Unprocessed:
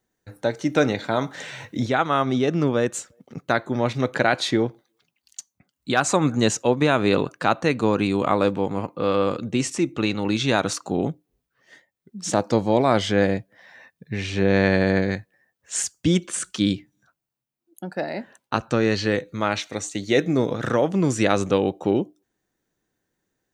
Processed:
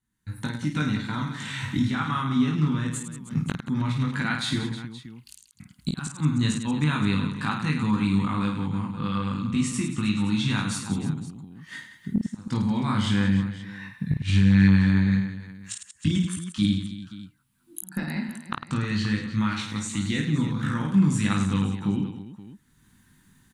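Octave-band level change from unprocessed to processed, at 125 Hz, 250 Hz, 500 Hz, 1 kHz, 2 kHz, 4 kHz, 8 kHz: +3.5, 0.0, −19.5, −8.0, −5.0, −3.5, −6.5 decibels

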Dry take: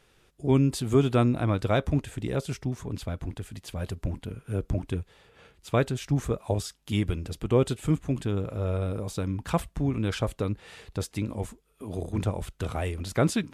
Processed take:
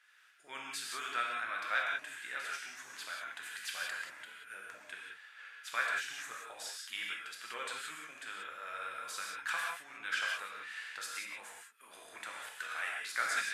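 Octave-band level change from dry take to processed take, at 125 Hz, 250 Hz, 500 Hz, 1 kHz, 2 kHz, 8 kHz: below −40 dB, −35.0 dB, −23.5 dB, −4.0 dB, +5.5 dB, −3.0 dB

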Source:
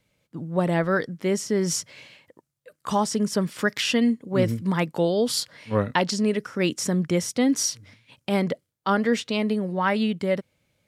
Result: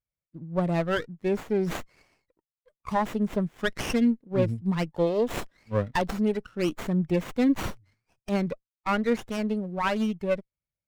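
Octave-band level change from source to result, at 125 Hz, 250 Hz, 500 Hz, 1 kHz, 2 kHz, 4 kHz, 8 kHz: −2.5, −2.5, −3.0, −3.0, −5.0, −10.0, −16.0 decibels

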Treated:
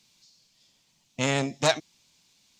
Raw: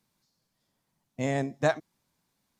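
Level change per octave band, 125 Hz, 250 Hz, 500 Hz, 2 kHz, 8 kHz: +1.5, +1.0, +1.0, +4.5, +13.0 decibels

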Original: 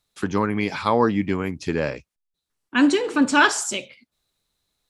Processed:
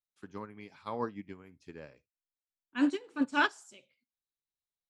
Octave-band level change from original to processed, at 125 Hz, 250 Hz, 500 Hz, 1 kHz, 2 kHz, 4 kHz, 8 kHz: −22.0 dB, −13.0 dB, −17.5 dB, −13.5 dB, −12.5 dB, −14.5 dB, below −25 dB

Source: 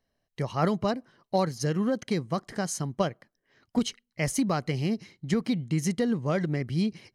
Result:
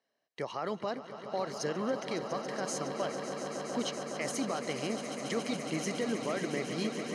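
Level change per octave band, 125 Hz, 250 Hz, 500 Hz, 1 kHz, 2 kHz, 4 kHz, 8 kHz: −14.0, −8.5, −3.5, −4.0, −2.0, −1.5, −3.0 decibels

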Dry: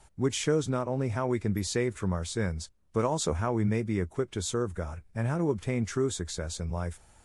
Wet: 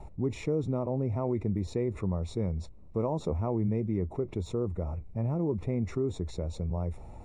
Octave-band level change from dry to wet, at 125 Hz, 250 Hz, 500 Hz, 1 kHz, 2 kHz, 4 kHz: 0.0, −1.0, −2.0, −5.5, −13.0, −13.0 decibels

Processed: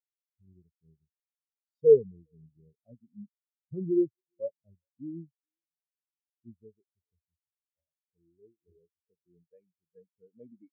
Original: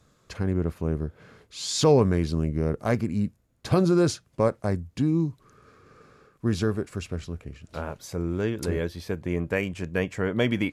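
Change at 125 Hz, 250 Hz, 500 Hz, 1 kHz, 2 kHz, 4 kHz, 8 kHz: −22.0 dB, −12.5 dB, −3.0 dB, below −40 dB, below −40 dB, below −40 dB, below −40 dB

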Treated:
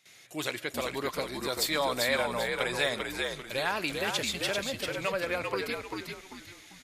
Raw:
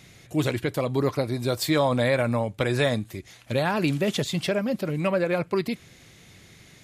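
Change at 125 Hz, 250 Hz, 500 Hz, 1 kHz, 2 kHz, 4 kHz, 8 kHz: −17.0, −12.0, −7.0, −3.0, 0.0, +1.0, +1.5 decibels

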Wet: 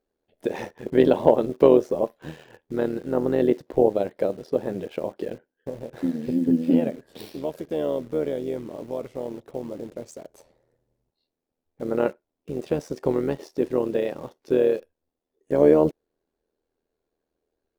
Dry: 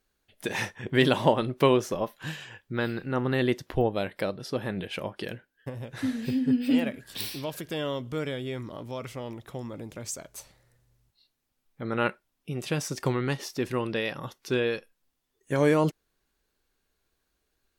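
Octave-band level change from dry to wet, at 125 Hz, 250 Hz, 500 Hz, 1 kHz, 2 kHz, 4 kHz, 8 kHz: −3.5 dB, +4.0 dB, +7.0 dB, −0.5 dB, −8.0 dB, −10.0 dB, below −10 dB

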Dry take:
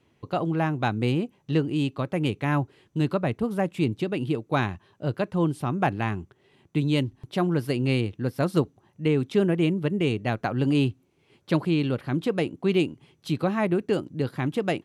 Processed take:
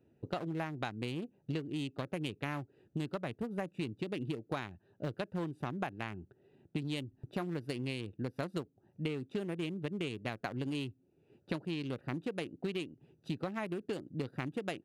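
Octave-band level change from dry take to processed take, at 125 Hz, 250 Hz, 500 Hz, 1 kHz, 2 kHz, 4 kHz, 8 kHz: −14.0, −13.5, −13.5, −13.0, −10.5, −9.5, −8.5 decibels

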